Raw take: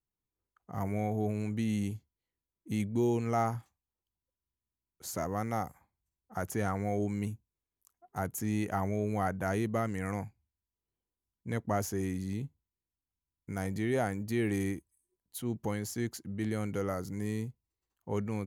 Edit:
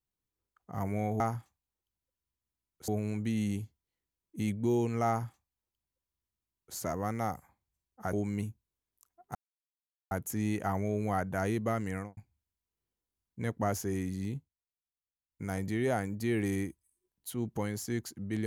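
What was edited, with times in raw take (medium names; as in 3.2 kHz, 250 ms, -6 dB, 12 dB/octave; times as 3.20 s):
3.40–5.08 s: copy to 1.20 s
6.45–6.97 s: delete
8.19 s: insert silence 0.76 s
10.00–10.25 s: studio fade out
12.44–13.50 s: dip -15.5 dB, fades 0.14 s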